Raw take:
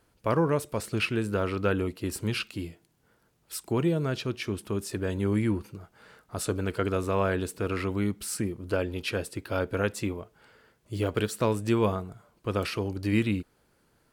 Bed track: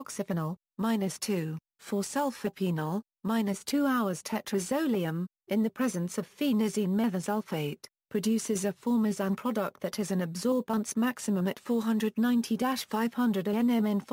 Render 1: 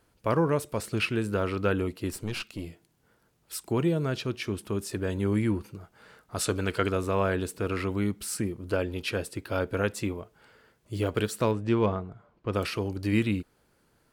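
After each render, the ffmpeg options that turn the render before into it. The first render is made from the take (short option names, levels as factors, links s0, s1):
-filter_complex "[0:a]asettb=1/sr,asplit=3[s0][s1][s2];[s0]atrim=end=2.114[s3];[s1]atrim=start=2.11:end=2.67,asetpts=PTS-STARTPTS,afade=t=in:d=0.004:c=qsin,afade=t=out:st=0.556:d=0.004:c=qsin,aeval=exprs='(tanh(20*val(0)+0.6)-tanh(0.6))/20':c=same[s4];[s2]atrim=start=2.666[s5];[s3][s4]acrossfade=d=0.004:c1=hsin:c2=qsin[s6];[s6][s5]acrossfade=d=0.004:c1=qsin:c2=hsin,asettb=1/sr,asplit=3[s7][s8][s9];[s7]atrim=end=6.354[s10];[s8]atrim=start=6.35:end=6.91,asetpts=PTS-STARTPTS,afade=t=in:d=0.004:c=qsin,afade=t=out:st=0.556:d=0.004:c=qsin,equalizer=f=3500:w=0.33:g=6[s11];[s9]atrim=start=6.906[s12];[s10][s11]acrossfade=d=0.004:c1=hsin:c2=qsin[s13];[s13][s12]acrossfade=d=0.004:c1=qsin:c2=hsin,asettb=1/sr,asplit=3[s14][s15][s16];[s14]atrim=end=11.514[s17];[s15]atrim=start=11.51:end=12.53,asetpts=PTS-STARTPTS,afade=t=in:d=0.004:c=qsin,afade=t=out:st=1.016:d=0.004:c=qsin,adynamicsmooth=sensitivity=1.5:basefreq=3000[s18];[s16]atrim=start=12.526[s19];[s17][s18]acrossfade=d=0.004:c1=hsin:c2=qsin[s20];[s20][s19]acrossfade=d=0.004:c1=qsin:c2=hsin"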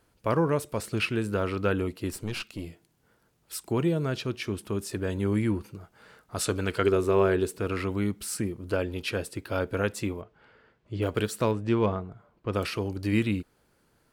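-filter_complex "[0:a]asettb=1/sr,asplit=3[s0][s1][s2];[s0]atrim=end=6.844[s3];[s1]atrim=start=6.84:end=7.58,asetpts=PTS-STARTPTS,afade=t=in:d=0.004:c=qsin,afade=t=out:st=0.736:d=0.004:c=qsin,equalizer=f=390:w=7:g=12.5[s4];[s2]atrim=start=7.576[s5];[s3][s4]acrossfade=d=0.004:c1=hsin:c2=qsin[s6];[s6][s5]acrossfade=d=0.004:c1=qsin:c2=hsin,asplit=3[s7][s8][s9];[s7]afade=t=out:st=10.21:d=0.02[s10];[s8]lowpass=3300,afade=t=in:st=10.21:d=0.02,afade=t=out:st=11.01:d=0.02[s11];[s9]afade=t=in:st=11.01:d=0.02[s12];[s10][s11][s12]amix=inputs=3:normalize=0"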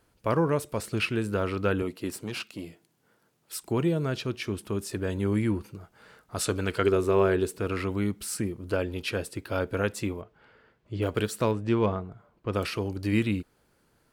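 -filter_complex "[0:a]asettb=1/sr,asplit=3[s0][s1][s2];[s0]atrim=end=1.824[s3];[s1]atrim=start=1.82:end=3.63,asetpts=PTS-STARTPTS,afade=t=in:d=0.004:c=qsin,afade=t=out:st=1.806:d=0.004:c=qsin,highpass=140[s4];[s2]atrim=start=3.626[s5];[s3][s4]acrossfade=d=0.004:c1=hsin:c2=qsin[s6];[s6][s5]acrossfade=d=0.004:c1=qsin:c2=hsin"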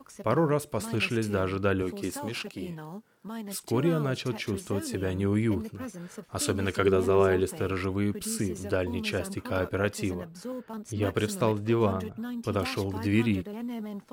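-filter_complex "[1:a]volume=0.335[s0];[0:a][s0]amix=inputs=2:normalize=0"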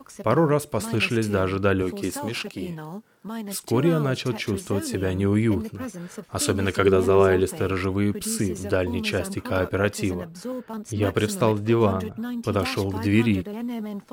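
-af "volume=1.78"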